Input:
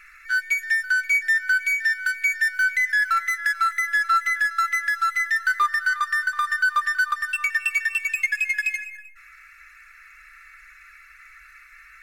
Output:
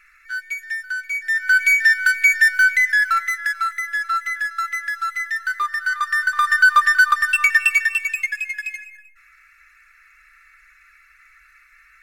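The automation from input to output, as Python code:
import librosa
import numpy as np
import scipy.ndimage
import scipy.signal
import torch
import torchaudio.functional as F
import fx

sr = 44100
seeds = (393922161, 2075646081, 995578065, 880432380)

y = fx.gain(x, sr, db=fx.line((1.15, -5.0), (1.61, 7.5), (2.46, 7.5), (3.82, -2.0), (5.66, -2.0), (6.62, 8.0), (7.61, 8.0), (8.54, -4.0)))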